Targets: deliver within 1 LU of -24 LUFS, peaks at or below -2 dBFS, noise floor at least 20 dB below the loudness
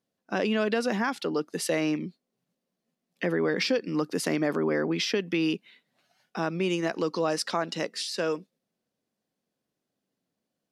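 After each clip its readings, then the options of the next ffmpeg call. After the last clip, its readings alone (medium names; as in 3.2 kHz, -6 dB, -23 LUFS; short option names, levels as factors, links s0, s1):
loudness -28.5 LUFS; peak level -12.5 dBFS; loudness target -24.0 LUFS
-> -af "volume=1.68"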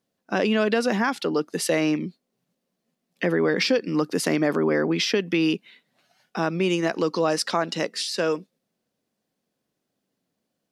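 loudness -24.0 LUFS; peak level -8.0 dBFS; noise floor -80 dBFS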